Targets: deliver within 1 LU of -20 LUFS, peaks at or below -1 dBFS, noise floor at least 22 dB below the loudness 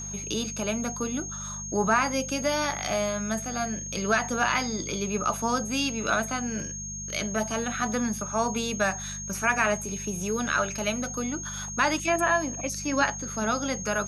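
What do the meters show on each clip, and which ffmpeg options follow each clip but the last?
hum 50 Hz; harmonics up to 200 Hz; hum level -38 dBFS; steady tone 6500 Hz; tone level -35 dBFS; loudness -27.5 LUFS; peak -10.5 dBFS; loudness target -20.0 LUFS
-> -af "bandreject=f=50:t=h:w=4,bandreject=f=100:t=h:w=4,bandreject=f=150:t=h:w=4,bandreject=f=200:t=h:w=4"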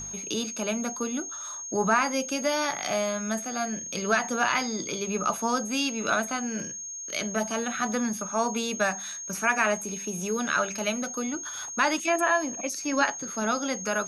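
hum none; steady tone 6500 Hz; tone level -35 dBFS
-> -af "bandreject=f=6.5k:w=30"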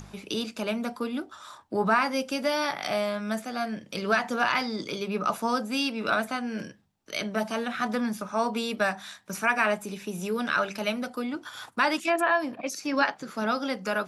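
steady tone none; loudness -28.5 LUFS; peak -11.0 dBFS; loudness target -20.0 LUFS
-> -af "volume=8.5dB"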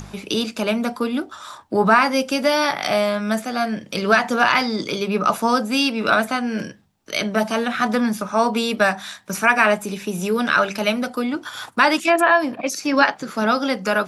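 loudness -20.0 LUFS; peak -2.5 dBFS; noise floor -46 dBFS

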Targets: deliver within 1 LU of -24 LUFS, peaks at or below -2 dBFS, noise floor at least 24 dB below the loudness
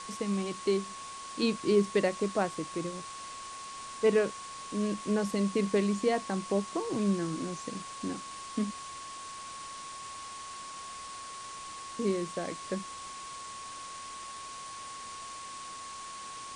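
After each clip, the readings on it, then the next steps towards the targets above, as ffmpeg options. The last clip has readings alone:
steady tone 1100 Hz; tone level -42 dBFS; noise floor -43 dBFS; noise floor target -58 dBFS; loudness -34.0 LUFS; peak -14.0 dBFS; loudness target -24.0 LUFS
-> -af "bandreject=f=1.1k:w=30"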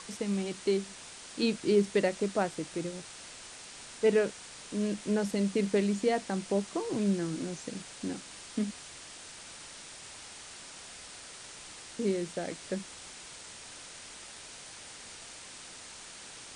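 steady tone none; noise floor -48 dBFS; noise floor target -56 dBFS
-> -af "afftdn=nr=8:nf=-48"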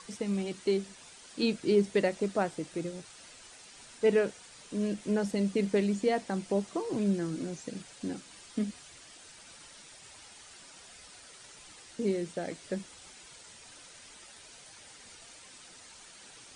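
noise floor -53 dBFS; noise floor target -56 dBFS
-> -af "afftdn=nr=6:nf=-53"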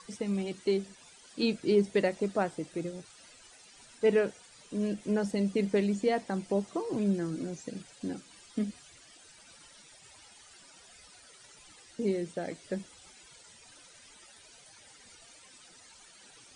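noise floor -56 dBFS; loudness -32.0 LUFS; peak -14.5 dBFS; loudness target -24.0 LUFS
-> -af "volume=8dB"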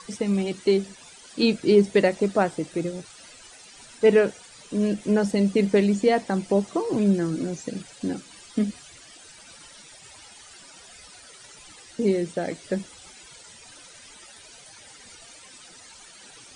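loudness -24.0 LUFS; peak -6.5 dBFS; noise floor -48 dBFS

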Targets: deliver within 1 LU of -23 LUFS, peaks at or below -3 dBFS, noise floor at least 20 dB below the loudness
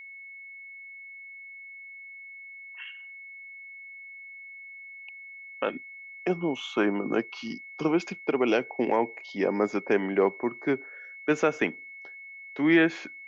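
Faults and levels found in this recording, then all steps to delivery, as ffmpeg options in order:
steady tone 2200 Hz; tone level -42 dBFS; loudness -27.5 LUFS; peak -10.0 dBFS; loudness target -23.0 LUFS
-> -af "bandreject=f=2.2k:w=30"
-af "volume=4.5dB"

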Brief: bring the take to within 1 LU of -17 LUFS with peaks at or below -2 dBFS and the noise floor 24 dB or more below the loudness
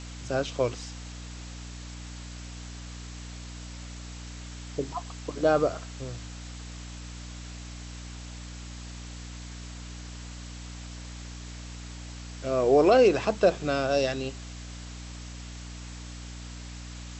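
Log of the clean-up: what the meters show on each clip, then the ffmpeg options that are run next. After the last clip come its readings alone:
hum 60 Hz; harmonics up to 300 Hz; hum level -39 dBFS; noise floor -41 dBFS; noise floor target -50 dBFS; loudness -26.0 LUFS; peak -9.5 dBFS; loudness target -17.0 LUFS
-> -af "bandreject=f=60:t=h:w=4,bandreject=f=120:t=h:w=4,bandreject=f=180:t=h:w=4,bandreject=f=240:t=h:w=4,bandreject=f=300:t=h:w=4"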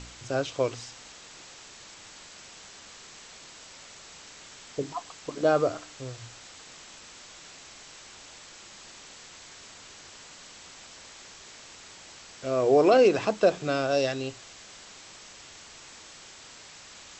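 hum none; noise floor -49 dBFS; noise floor target -50 dBFS
-> -af "afftdn=nr=6:nf=-49"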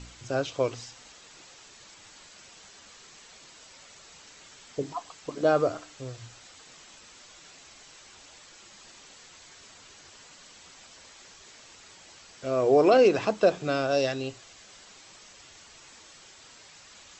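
noise floor -52 dBFS; loudness -25.5 LUFS; peak -9.0 dBFS; loudness target -17.0 LUFS
-> -af "volume=8.5dB,alimiter=limit=-2dB:level=0:latency=1"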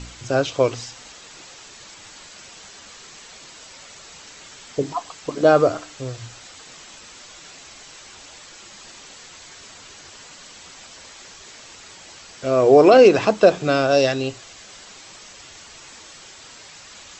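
loudness -17.5 LUFS; peak -2.0 dBFS; noise floor -44 dBFS

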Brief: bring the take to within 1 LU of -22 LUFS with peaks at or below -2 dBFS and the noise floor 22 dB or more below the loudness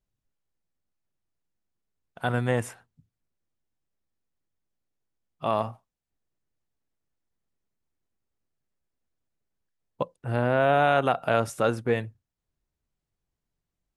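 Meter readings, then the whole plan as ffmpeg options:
loudness -26.0 LUFS; peak -9.0 dBFS; loudness target -22.0 LUFS
-> -af "volume=4dB"

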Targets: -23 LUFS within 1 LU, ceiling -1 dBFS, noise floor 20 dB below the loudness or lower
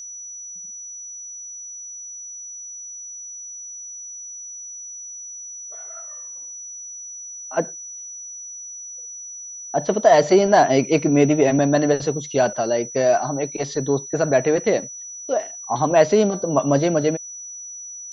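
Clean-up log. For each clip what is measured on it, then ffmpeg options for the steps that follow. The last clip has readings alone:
steady tone 5900 Hz; tone level -33 dBFS; loudness -19.5 LUFS; peak -2.0 dBFS; loudness target -23.0 LUFS
-> -af "bandreject=f=5.9k:w=30"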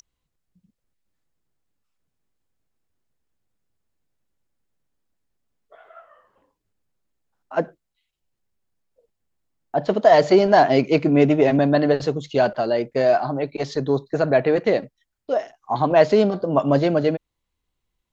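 steady tone none; loudness -19.5 LUFS; peak -2.0 dBFS; loudness target -23.0 LUFS
-> -af "volume=-3.5dB"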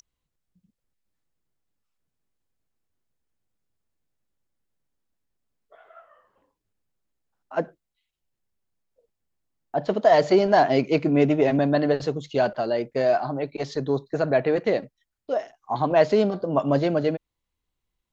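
loudness -23.0 LUFS; peak -5.5 dBFS; noise floor -83 dBFS

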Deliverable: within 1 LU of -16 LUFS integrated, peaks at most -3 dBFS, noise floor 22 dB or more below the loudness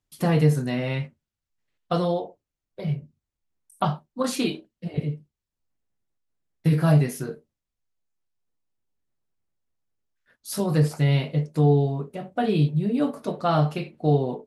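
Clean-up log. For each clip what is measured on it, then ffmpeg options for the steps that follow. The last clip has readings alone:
loudness -24.5 LUFS; peak -8.0 dBFS; loudness target -16.0 LUFS
-> -af "volume=8.5dB,alimiter=limit=-3dB:level=0:latency=1"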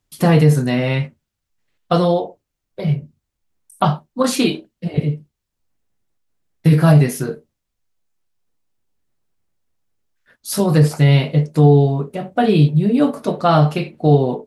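loudness -16.5 LUFS; peak -3.0 dBFS; noise floor -78 dBFS

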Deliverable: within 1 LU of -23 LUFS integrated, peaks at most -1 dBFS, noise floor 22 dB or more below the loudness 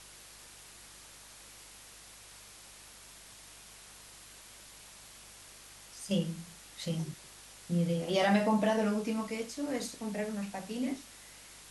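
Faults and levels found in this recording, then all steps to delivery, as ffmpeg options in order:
hum 50 Hz; harmonics up to 200 Hz; hum level -56 dBFS; noise floor -53 dBFS; noise floor target -55 dBFS; loudness -33.0 LUFS; peak -15.5 dBFS; loudness target -23.0 LUFS
-> -af "bandreject=f=50:t=h:w=4,bandreject=f=100:t=h:w=4,bandreject=f=150:t=h:w=4,bandreject=f=200:t=h:w=4"
-af "afftdn=nr=6:nf=-53"
-af "volume=10dB"

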